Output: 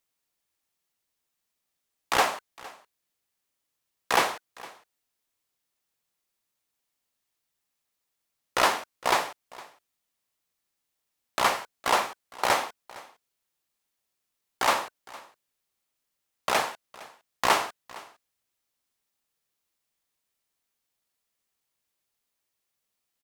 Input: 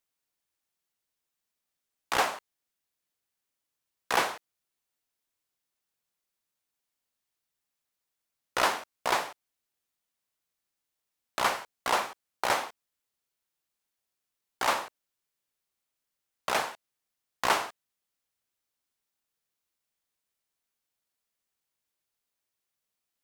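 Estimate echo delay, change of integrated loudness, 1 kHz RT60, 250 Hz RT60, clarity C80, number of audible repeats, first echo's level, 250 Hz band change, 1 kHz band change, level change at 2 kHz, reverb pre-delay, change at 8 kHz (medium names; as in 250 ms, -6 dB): 460 ms, +3.0 dB, no reverb, no reverb, no reverb, 1, -21.0 dB, +3.5 dB, +3.5 dB, +3.0 dB, no reverb, +3.5 dB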